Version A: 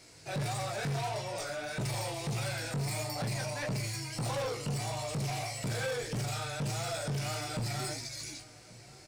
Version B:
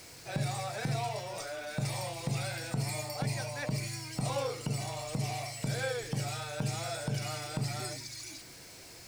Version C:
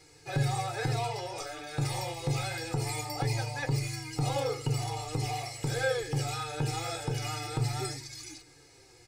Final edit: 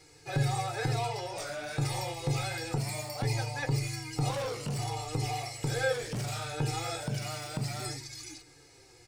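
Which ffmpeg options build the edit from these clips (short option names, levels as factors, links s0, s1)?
-filter_complex "[0:a]asplit=3[s0][s1][s2];[1:a]asplit=2[s3][s4];[2:a]asplit=6[s5][s6][s7][s8][s9][s10];[s5]atrim=end=1.372[s11];[s0]atrim=start=1.368:end=1.772[s12];[s6]atrim=start=1.768:end=2.782[s13];[s3]atrim=start=2.778:end=3.232[s14];[s7]atrim=start=3.228:end=4.312[s15];[s1]atrim=start=4.308:end=4.792[s16];[s8]atrim=start=4.788:end=5.932[s17];[s2]atrim=start=5.928:end=6.532[s18];[s9]atrim=start=6.528:end=7.032[s19];[s4]atrim=start=7.028:end=7.862[s20];[s10]atrim=start=7.858[s21];[s11][s12]acrossfade=d=0.004:c1=hsin:c2=hsin[s22];[s22][s13]acrossfade=d=0.004:c1=hsin:c2=hsin[s23];[s23][s14]acrossfade=d=0.004:c1=hsin:c2=hsin[s24];[s24][s15]acrossfade=d=0.004:c1=hsin:c2=hsin[s25];[s25][s16]acrossfade=d=0.004:c1=hsin:c2=hsin[s26];[s26][s17]acrossfade=d=0.004:c1=hsin:c2=hsin[s27];[s27][s18]acrossfade=d=0.004:c1=hsin:c2=hsin[s28];[s28][s19]acrossfade=d=0.004:c1=hsin:c2=hsin[s29];[s29][s20]acrossfade=d=0.004:c1=hsin:c2=hsin[s30];[s30][s21]acrossfade=d=0.004:c1=hsin:c2=hsin"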